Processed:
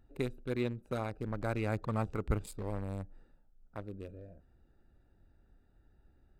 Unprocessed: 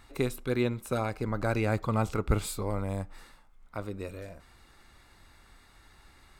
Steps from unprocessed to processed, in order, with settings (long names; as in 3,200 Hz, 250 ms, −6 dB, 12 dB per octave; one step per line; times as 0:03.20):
adaptive Wiener filter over 41 samples
level −5.5 dB